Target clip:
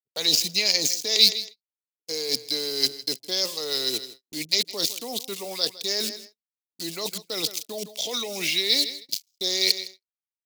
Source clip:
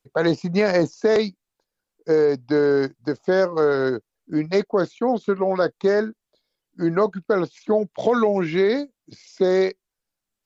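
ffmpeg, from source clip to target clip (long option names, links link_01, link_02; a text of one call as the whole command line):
ffmpeg -i in.wav -filter_complex "[0:a]acrossover=split=370|600[link_01][link_02][link_03];[link_03]aeval=exprs='val(0)*gte(abs(val(0)),0.00531)':channel_layout=same[link_04];[link_01][link_02][link_04]amix=inputs=3:normalize=0,aecho=1:1:160|320:0.1|0.028,areverse,acompressor=threshold=-26dB:ratio=10,areverse,highpass=frequency=200:poles=1,acompressor=mode=upward:threshold=-47dB:ratio=2.5,agate=range=-44dB:threshold=-46dB:ratio=16:detection=peak,aexciter=amount=15.5:drive=9.2:freq=2500,volume=-4.5dB" out.wav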